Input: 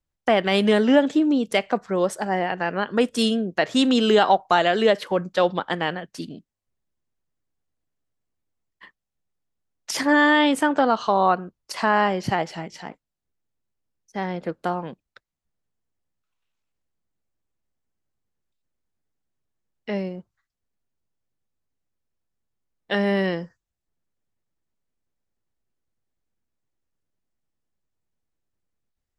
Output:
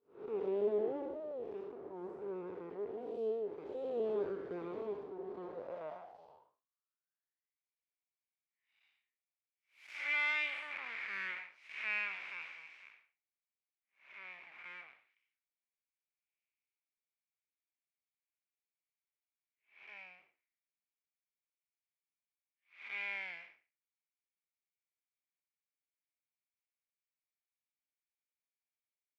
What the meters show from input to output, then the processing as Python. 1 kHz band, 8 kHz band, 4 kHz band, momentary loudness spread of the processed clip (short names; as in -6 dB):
-28.0 dB, under -30 dB, -24.0 dB, 18 LU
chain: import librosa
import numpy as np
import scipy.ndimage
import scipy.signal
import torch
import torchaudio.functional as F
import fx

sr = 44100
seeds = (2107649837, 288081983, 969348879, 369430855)

y = fx.spec_blur(x, sr, span_ms=234.0)
y = np.abs(y)
y = fx.filter_sweep_bandpass(y, sr, from_hz=410.0, to_hz=2300.0, start_s=5.33, end_s=7.65, q=7.8)
y = y * 10.0 ** (1.0 / 20.0)